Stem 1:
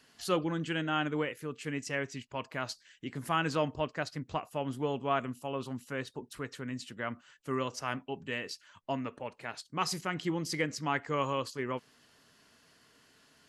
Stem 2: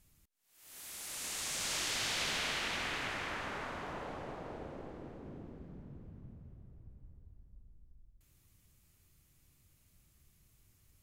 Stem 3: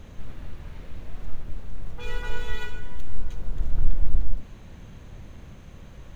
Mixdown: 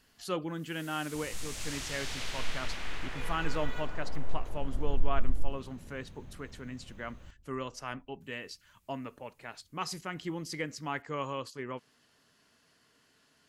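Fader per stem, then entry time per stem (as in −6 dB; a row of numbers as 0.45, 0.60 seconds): −4.0, −4.5, −8.0 decibels; 0.00, 0.00, 1.15 seconds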